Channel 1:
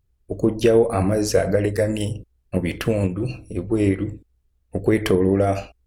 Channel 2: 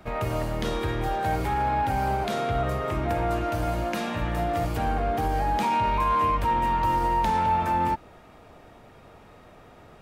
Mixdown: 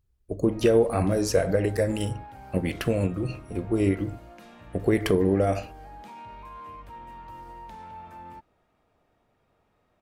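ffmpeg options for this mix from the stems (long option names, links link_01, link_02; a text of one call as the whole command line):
ffmpeg -i stem1.wav -i stem2.wav -filter_complex "[0:a]volume=-4dB[link_01];[1:a]adelay=450,volume=-19.5dB[link_02];[link_01][link_02]amix=inputs=2:normalize=0" out.wav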